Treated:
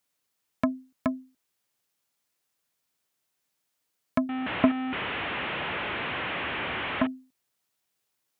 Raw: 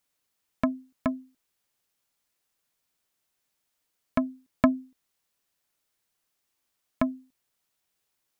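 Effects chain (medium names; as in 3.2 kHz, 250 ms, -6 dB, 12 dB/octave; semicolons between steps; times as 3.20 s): 4.29–7.07 s: one-bit delta coder 16 kbps, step -24.5 dBFS; high-pass 73 Hz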